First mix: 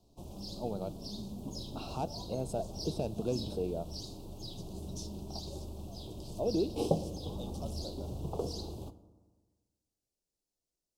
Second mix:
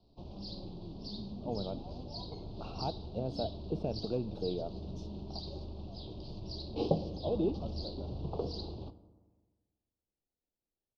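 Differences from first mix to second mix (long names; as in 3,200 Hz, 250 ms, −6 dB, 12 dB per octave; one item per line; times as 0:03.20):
first voice: entry +0.85 s
background: add low-pass with resonance 4,600 Hz, resonance Q 4.4
master: add high-frequency loss of the air 280 metres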